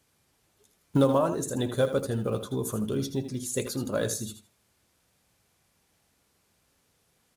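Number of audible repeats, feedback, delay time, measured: 2, 19%, 80 ms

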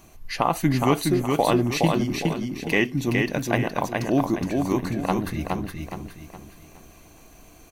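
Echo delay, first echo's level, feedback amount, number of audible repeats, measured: 0.417 s, -3.5 dB, 37%, 4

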